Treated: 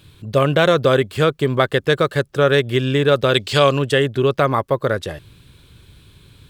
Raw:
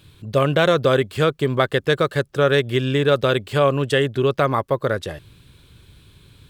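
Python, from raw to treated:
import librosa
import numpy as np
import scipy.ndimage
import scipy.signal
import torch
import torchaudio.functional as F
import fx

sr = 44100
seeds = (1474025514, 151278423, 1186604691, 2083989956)

y = fx.peak_eq(x, sr, hz=5000.0, db=14.0, octaves=1.7, at=(3.34, 3.79))
y = y * 10.0 ** (2.0 / 20.0)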